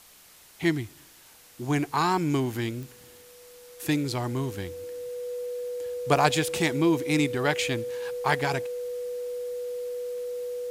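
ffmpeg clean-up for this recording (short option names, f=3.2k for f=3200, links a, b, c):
-af "adeclick=t=4,bandreject=f=490:w=30,afftdn=nr=19:nf=-53"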